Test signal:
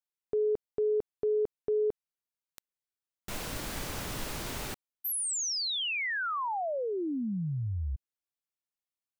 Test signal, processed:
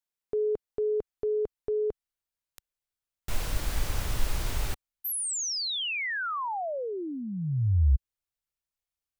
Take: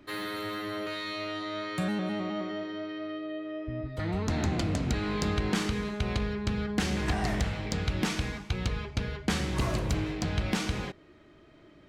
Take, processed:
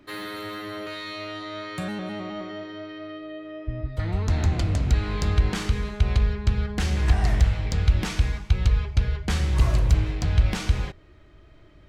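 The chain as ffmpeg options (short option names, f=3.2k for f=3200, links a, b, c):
-af "asubboost=boost=6.5:cutoff=85,volume=1dB"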